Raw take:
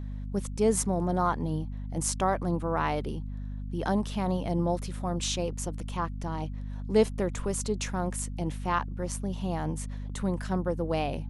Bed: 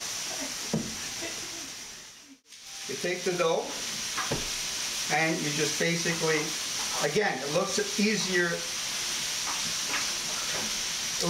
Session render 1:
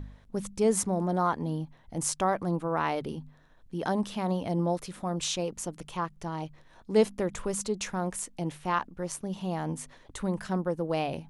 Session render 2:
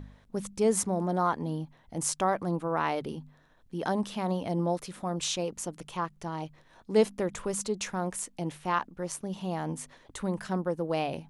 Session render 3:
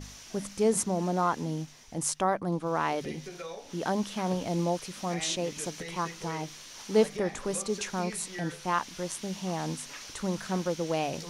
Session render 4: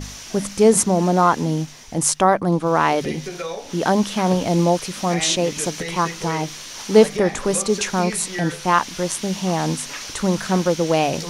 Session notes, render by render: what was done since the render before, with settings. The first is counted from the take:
de-hum 50 Hz, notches 5
low shelf 89 Hz -7 dB
add bed -14.5 dB
gain +11.5 dB; limiter -1 dBFS, peak gain reduction 1 dB

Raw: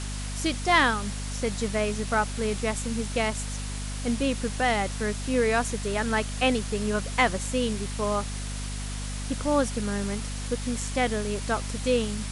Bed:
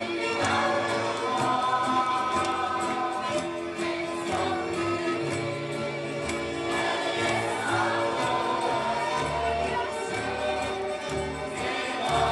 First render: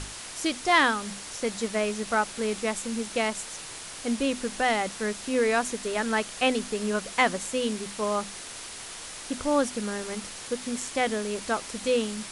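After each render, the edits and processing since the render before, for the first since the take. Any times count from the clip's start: notches 50/100/150/200/250 Hz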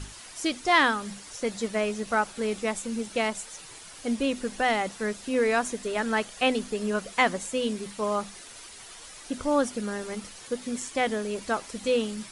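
denoiser 9 dB, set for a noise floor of -41 dBFS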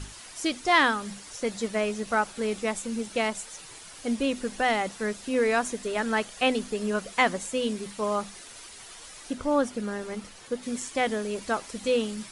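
9.33–10.63 high shelf 3700 Hz -6 dB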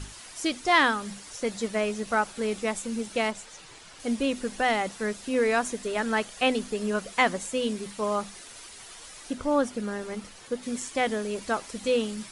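3.31–4 air absorption 60 m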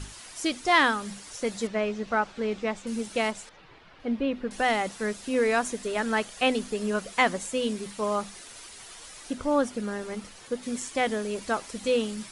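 1.67–2.87 air absorption 140 m; 3.49–4.51 air absorption 340 m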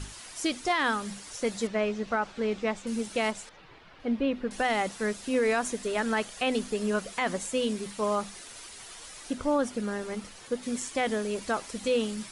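limiter -17.5 dBFS, peak gain reduction 9.5 dB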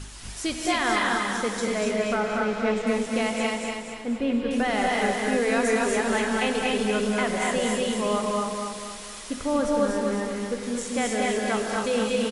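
on a send: feedback echo 0.239 s, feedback 45%, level -4 dB; on the sum: non-linear reverb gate 0.3 s rising, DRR -0.5 dB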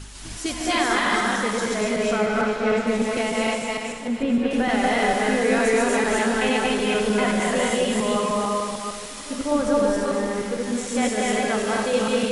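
reverse delay 0.151 s, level 0 dB; pre-echo 0.197 s -17.5 dB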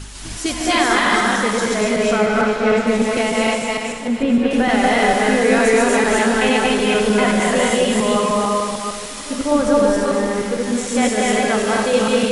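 gain +5.5 dB

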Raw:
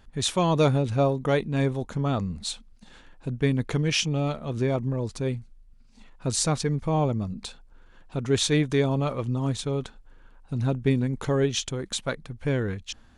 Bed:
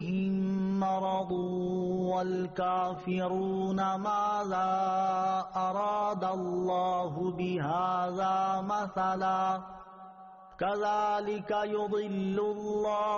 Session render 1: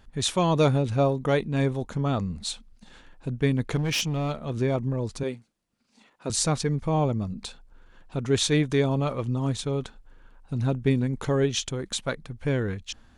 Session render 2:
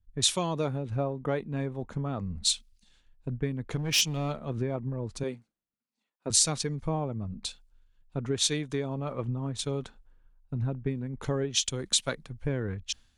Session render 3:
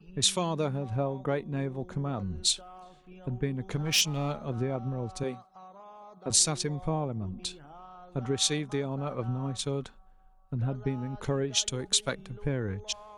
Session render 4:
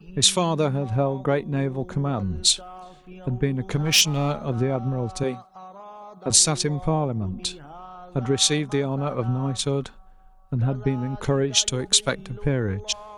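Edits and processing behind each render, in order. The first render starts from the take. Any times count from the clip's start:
3.76–4.5 hard clip -22 dBFS; 5.23–6.3 HPF 250 Hz
compressor 16:1, threshold -27 dBFS, peak gain reduction 12 dB; three-band expander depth 100%
add bed -19 dB
gain +7.5 dB; limiter -3 dBFS, peak gain reduction 2 dB

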